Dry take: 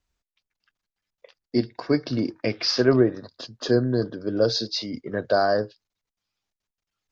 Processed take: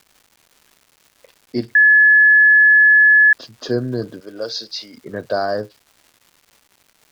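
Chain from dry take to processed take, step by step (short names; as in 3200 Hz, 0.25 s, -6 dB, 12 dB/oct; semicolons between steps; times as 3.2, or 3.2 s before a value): 4.2–4.98 HPF 880 Hz 6 dB/oct; crackle 430/s -40 dBFS; 1.75–3.33 bleep 1710 Hz -7 dBFS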